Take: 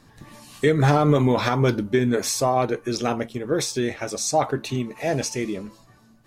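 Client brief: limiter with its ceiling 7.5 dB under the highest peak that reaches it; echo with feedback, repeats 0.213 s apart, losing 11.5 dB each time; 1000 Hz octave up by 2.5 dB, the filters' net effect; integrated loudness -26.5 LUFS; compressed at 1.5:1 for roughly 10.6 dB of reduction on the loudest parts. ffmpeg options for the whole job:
-af "equalizer=f=1k:t=o:g=3.5,acompressor=threshold=-44dB:ratio=1.5,alimiter=limit=-22.5dB:level=0:latency=1,aecho=1:1:213|426|639:0.266|0.0718|0.0194,volume=6.5dB"

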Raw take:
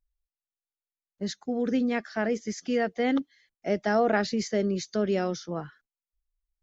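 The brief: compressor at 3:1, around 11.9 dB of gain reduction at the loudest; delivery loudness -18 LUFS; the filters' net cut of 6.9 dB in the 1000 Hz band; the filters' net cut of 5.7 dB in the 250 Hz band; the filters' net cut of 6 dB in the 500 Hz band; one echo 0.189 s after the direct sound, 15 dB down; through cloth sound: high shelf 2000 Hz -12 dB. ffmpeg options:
-af "equalizer=f=250:t=o:g=-5.5,equalizer=f=500:t=o:g=-3.5,equalizer=f=1k:t=o:g=-5.5,acompressor=threshold=-40dB:ratio=3,highshelf=f=2k:g=-12,aecho=1:1:189:0.178,volume=25.5dB"

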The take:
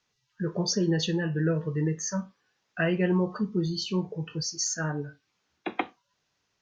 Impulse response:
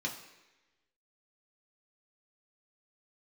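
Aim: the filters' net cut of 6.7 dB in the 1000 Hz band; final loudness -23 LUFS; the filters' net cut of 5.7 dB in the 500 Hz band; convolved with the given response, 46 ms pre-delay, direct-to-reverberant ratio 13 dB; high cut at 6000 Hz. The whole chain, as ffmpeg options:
-filter_complex "[0:a]lowpass=6k,equalizer=f=500:t=o:g=-7,equalizer=f=1k:t=o:g=-6.5,asplit=2[a][b];[1:a]atrim=start_sample=2205,adelay=46[c];[b][c]afir=irnorm=-1:irlink=0,volume=-16dB[d];[a][d]amix=inputs=2:normalize=0,volume=7.5dB"

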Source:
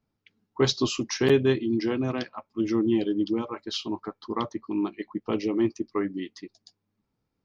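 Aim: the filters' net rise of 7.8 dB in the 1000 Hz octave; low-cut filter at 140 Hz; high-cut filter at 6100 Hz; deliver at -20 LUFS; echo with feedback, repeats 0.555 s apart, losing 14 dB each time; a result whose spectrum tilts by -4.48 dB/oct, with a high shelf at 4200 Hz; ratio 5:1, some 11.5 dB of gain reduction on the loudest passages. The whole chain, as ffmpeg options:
-af "highpass=140,lowpass=6.1k,equalizer=f=1k:t=o:g=9,highshelf=f=4.2k:g=3.5,acompressor=threshold=-28dB:ratio=5,aecho=1:1:555|1110:0.2|0.0399,volume=13dB"

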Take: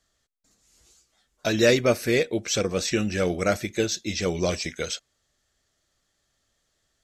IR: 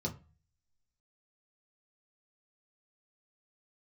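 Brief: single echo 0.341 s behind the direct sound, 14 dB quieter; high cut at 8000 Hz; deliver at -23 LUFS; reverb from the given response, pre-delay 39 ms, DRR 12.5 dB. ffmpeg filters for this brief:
-filter_complex "[0:a]lowpass=8k,aecho=1:1:341:0.2,asplit=2[a][b];[1:a]atrim=start_sample=2205,adelay=39[c];[b][c]afir=irnorm=-1:irlink=0,volume=-14.5dB[d];[a][d]amix=inputs=2:normalize=0,volume=1dB"

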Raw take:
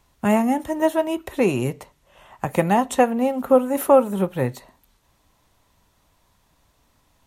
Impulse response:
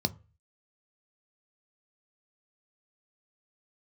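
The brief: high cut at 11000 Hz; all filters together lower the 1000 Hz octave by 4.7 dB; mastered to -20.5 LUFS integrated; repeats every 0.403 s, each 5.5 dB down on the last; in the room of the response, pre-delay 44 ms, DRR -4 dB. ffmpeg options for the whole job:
-filter_complex "[0:a]lowpass=11k,equalizer=f=1k:t=o:g=-6.5,aecho=1:1:403|806|1209|1612|2015|2418|2821:0.531|0.281|0.149|0.079|0.0419|0.0222|0.0118,asplit=2[a][b];[1:a]atrim=start_sample=2205,adelay=44[c];[b][c]afir=irnorm=-1:irlink=0,volume=-1.5dB[d];[a][d]amix=inputs=2:normalize=0,volume=-9dB"

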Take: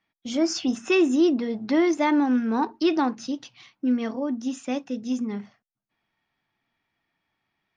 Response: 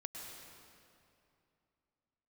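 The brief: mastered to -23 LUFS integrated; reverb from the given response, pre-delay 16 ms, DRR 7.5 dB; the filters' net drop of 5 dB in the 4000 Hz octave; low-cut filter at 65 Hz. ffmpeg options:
-filter_complex "[0:a]highpass=65,equalizer=f=4k:t=o:g=-7,asplit=2[a][b];[1:a]atrim=start_sample=2205,adelay=16[c];[b][c]afir=irnorm=-1:irlink=0,volume=-5.5dB[d];[a][d]amix=inputs=2:normalize=0,volume=1dB"

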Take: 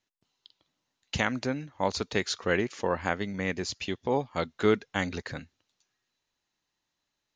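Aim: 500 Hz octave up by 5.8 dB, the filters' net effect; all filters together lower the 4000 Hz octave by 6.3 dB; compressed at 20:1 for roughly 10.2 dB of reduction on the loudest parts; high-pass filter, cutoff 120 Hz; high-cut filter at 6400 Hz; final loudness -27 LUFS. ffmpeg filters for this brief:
-af "highpass=120,lowpass=6.4k,equalizer=f=500:t=o:g=7,equalizer=f=4k:t=o:g=-7.5,acompressor=threshold=-23dB:ratio=20,volume=5dB"

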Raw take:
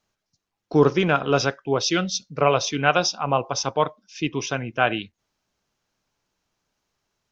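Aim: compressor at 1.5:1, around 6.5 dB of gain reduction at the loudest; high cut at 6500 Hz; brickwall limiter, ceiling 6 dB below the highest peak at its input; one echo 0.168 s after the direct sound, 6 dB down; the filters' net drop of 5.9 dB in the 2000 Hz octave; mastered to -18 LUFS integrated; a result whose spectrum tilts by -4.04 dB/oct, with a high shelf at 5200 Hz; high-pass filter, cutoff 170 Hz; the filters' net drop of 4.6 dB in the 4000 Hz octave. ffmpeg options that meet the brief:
-af "highpass=170,lowpass=6.5k,equalizer=f=2k:t=o:g=-8.5,equalizer=f=4k:t=o:g=-5.5,highshelf=f=5.2k:g=4.5,acompressor=threshold=-30dB:ratio=1.5,alimiter=limit=-17.5dB:level=0:latency=1,aecho=1:1:168:0.501,volume=11.5dB"

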